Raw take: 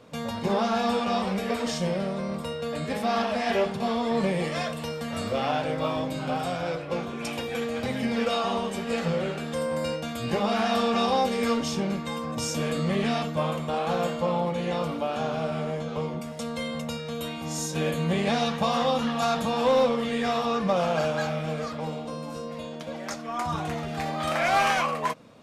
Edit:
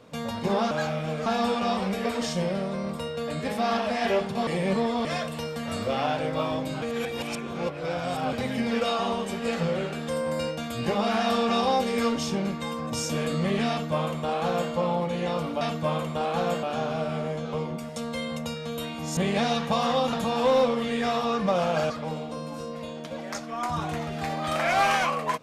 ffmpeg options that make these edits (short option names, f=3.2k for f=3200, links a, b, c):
-filter_complex "[0:a]asplit=12[a][b][c][d][e][f][g][h][i][j][k][l];[a]atrim=end=0.712[m];[b]atrim=start=21.108:end=21.662[n];[c]atrim=start=0.708:end=3.922[o];[d]atrim=start=3.918:end=4.502,asetpts=PTS-STARTPTS,areverse[p];[e]atrim=start=4.498:end=6.272[q];[f]atrim=start=6.268:end=7.782,asetpts=PTS-STARTPTS,areverse[r];[g]atrim=start=7.778:end=15.062[s];[h]atrim=start=13.138:end=14.162[t];[i]atrim=start=15.058:end=17.602[u];[j]atrim=start=18.078:end=19.042[v];[k]atrim=start=19.338:end=21.112[w];[l]atrim=start=21.658[x];[m][n]acrossfade=d=0.004:c1=hsin:c2=hsin[y];[y][o]acrossfade=d=0.004:c1=hsin:c2=hsin[z];[z][p]acrossfade=d=0.004:c1=hsin:c2=hsin[aa];[aa][q]acrossfade=d=0.004:c1=hsin:c2=hsin[ab];[ab][r]acrossfade=d=0.004:c1=hsin:c2=hsin[ac];[ac][s]acrossfade=d=0.004:c1=hsin:c2=hsin[ad];[ad][t]acrossfade=d=0.004:c1=hsin:c2=hsin[ae];[ae][u]acrossfade=d=0.004:c1=hsin:c2=hsin[af];[af][v]acrossfade=d=0.004:c1=hsin:c2=hsin[ag];[ag][w]acrossfade=d=0.004:c1=hsin:c2=hsin[ah];[ah][x]acrossfade=d=0.004:c1=hsin:c2=hsin"